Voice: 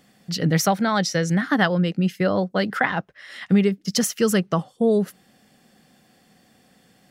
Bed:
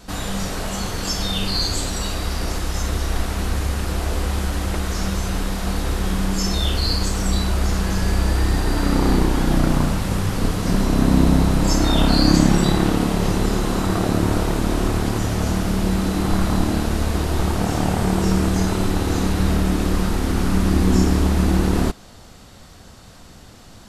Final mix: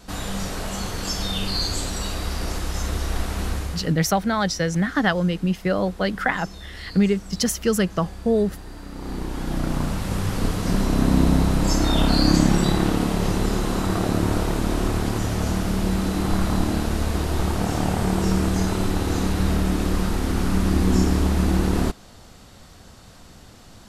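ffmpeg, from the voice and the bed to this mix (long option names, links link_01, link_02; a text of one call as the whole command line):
ffmpeg -i stem1.wav -i stem2.wav -filter_complex "[0:a]adelay=3450,volume=-1dB[link_01];[1:a]volume=13dB,afade=type=out:start_time=3.48:duration=0.47:silence=0.16788,afade=type=in:start_time=8.93:duration=1.39:silence=0.158489[link_02];[link_01][link_02]amix=inputs=2:normalize=0" out.wav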